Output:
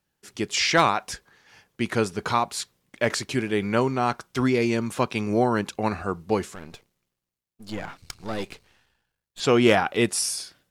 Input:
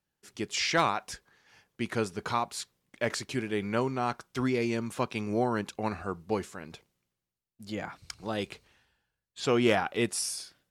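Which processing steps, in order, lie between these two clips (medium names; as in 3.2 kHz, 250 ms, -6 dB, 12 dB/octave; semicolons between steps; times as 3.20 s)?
6.55–9.40 s: partial rectifier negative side -12 dB; trim +6.5 dB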